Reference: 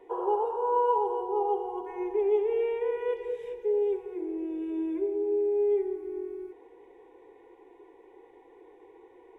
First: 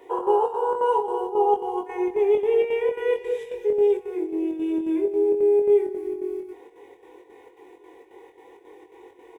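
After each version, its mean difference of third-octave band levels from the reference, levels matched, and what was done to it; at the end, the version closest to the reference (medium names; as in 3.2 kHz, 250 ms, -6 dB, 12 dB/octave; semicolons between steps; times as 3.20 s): 2.5 dB: high-pass 52 Hz; treble shelf 2.7 kHz +11.5 dB; square tremolo 3.7 Hz, depth 60%, duty 70%; doubling 22 ms -4 dB; trim +4.5 dB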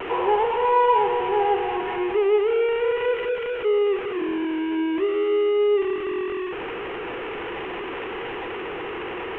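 9.5 dB: jump at every zero crossing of -31 dBFS; elliptic low-pass 2.9 kHz, stop band 40 dB; treble shelf 2.2 kHz +11 dB; vibrato 0.4 Hz 11 cents; trim +4.5 dB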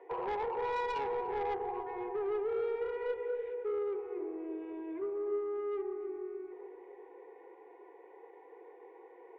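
5.0 dB: Chebyshev band-pass 480–2000 Hz, order 2; in parallel at -2 dB: compression, threshold -40 dBFS, peak gain reduction 17 dB; on the sum: saturation -28 dBFS, distortion -11 dB; filtered feedback delay 291 ms, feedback 57%, low-pass 860 Hz, level -7.5 dB; trim -3 dB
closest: first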